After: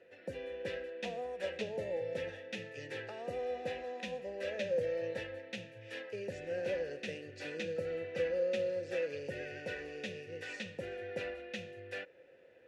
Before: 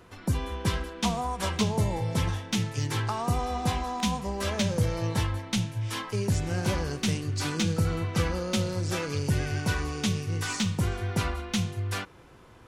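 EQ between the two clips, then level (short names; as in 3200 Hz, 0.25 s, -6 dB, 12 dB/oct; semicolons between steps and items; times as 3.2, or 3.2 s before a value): vowel filter e; notch 3100 Hz, Q 23; +4.0 dB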